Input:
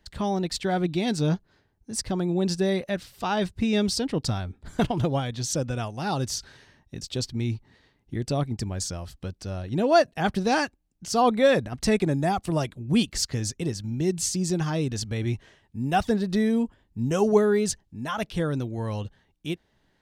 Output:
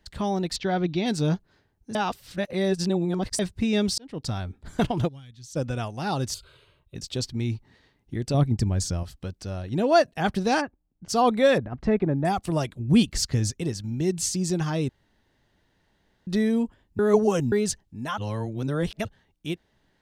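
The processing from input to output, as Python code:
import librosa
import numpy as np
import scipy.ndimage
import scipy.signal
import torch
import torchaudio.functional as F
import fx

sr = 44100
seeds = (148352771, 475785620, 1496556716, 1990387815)

y = fx.steep_lowpass(x, sr, hz=6300.0, slope=48, at=(0.56, 1.06))
y = fx.tone_stack(y, sr, knobs='6-0-2', at=(5.07, 5.55), fade=0.02)
y = fx.fixed_phaser(y, sr, hz=1200.0, stages=8, at=(6.34, 6.95))
y = fx.low_shelf(y, sr, hz=290.0, db=8.5, at=(8.34, 9.03))
y = fx.lowpass(y, sr, hz=1200.0, slope=12, at=(10.6, 11.08), fade=0.02)
y = fx.lowpass(y, sr, hz=1500.0, slope=12, at=(11.58, 12.25))
y = fx.low_shelf(y, sr, hz=250.0, db=6.5, at=(12.79, 13.51))
y = fx.edit(y, sr, fx.reverse_span(start_s=1.95, length_s=1.44),
    fx.fade_in_span(start_s=3.98, length_s=0.44),
    fx.room_tone_fill(start_s=14.89, length_s=1.38),
    fx.reverse_span(start_s=16.99, length_s=0.53),
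    fx.reverse_span(start_s=18.18, length_s=0.87), tone=tone)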